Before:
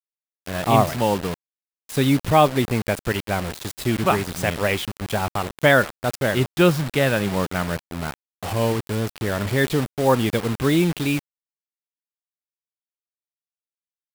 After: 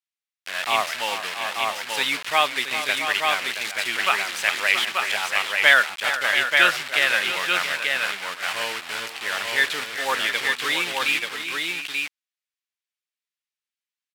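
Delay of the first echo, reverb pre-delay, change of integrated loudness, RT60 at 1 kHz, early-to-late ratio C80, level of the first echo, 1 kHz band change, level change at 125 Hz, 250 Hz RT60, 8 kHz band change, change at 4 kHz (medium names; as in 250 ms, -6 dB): 396 ms, no reverb, 0.0 dB, no reverb, no reverb, -11.5 dB, -1.5 dB, under -25 dB, no reverb, +2.0 dB, +8.0 dB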